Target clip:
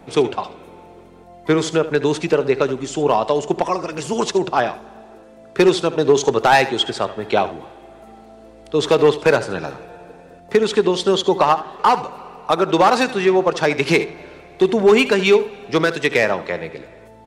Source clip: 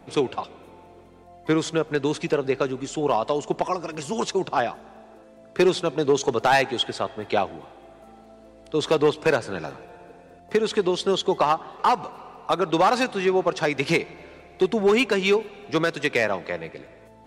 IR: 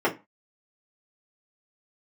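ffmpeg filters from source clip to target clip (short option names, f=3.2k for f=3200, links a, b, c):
-filter_complex "[0:a]aecho=1:1:74:0.188,asplit=2[a][b];[1:a]atrim=start_sample=2205[c];[b][c]afir=irnorm=-1:irlink=0,volume=-33dB[d];[a][d]amix=inputs=2:normalize=0,volume=5dB"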